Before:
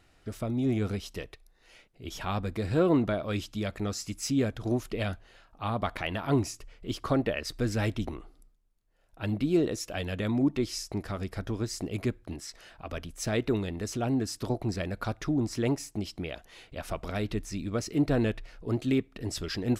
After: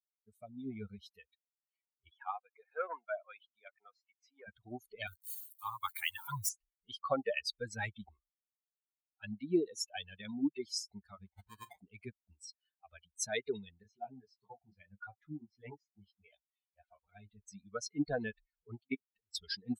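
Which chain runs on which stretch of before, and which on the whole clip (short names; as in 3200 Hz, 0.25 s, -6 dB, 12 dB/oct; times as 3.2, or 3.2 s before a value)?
2.1–4.48 BPF 530–2600 Hz + core saturation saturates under 900 Hz
5.07–6.49 switching spikes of -29 dBFS + elliptic band-stop 140–910 Hz
11.26–11.79 notches 60/120/180/240/300/360/420/480/540 Hz + sample-rate reducer 1400 Hz
13.83–17.48 LPF 4100 Hz + detuned doubles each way 15 cents
18.81–19.35 transient shaper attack +5 dB, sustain +1 dB + level quantiser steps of 22 dB + air absorption 73 m
whole clip: per-bin expansion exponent 3; HPF 650 Hz 6 dB/oct; gain +4.5 dB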